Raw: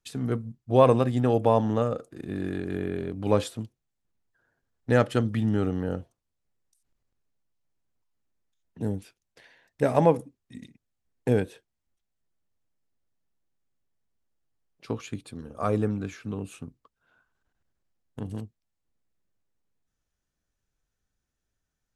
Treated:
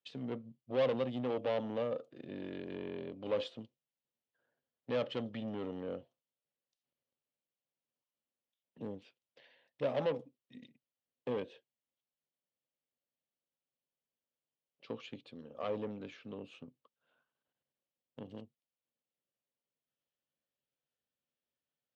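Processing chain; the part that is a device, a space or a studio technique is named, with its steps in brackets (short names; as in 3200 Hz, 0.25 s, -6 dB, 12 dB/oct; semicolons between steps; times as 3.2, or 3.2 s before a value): guitar amplifier (tube stage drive 23 dB, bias 0.35; tone controls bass -11 dB, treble +10 dB; speaker cabinet 94–3800 Hz, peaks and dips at 140 Hz +9 dB, 240 Hz +7 dB, 540 Hz +9 dB, 1500 Hz -4 dB, 3000 Hz +6 dB); gain -9 dB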